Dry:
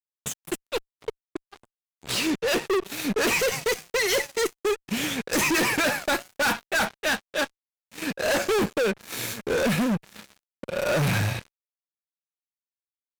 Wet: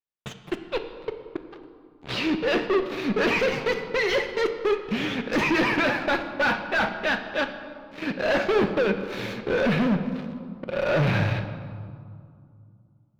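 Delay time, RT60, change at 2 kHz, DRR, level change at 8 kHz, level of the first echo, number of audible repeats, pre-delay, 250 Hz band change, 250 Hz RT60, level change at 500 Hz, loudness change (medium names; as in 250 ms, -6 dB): no echo, 2.3 s, +0.5 dB, 7.0 dB, -16.5 dB, no echo, no echo, 3 ms, +2.5 dB, 3.1 s, +2.0 dB, +0.5 dB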